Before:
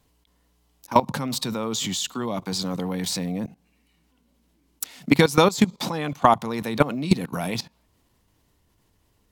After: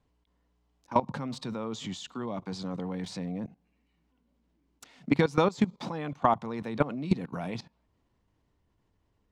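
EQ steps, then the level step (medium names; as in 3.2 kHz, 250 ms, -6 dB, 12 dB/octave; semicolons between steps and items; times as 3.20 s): distance through air 110 m; peaking EQ 4 kHz -4.5 dB 1.9 oct; -6.5 dB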